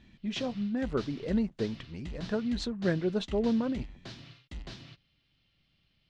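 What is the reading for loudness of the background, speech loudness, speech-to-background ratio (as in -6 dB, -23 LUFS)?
-46.5 LUFS, -32.5 LUFS, 14.0 dB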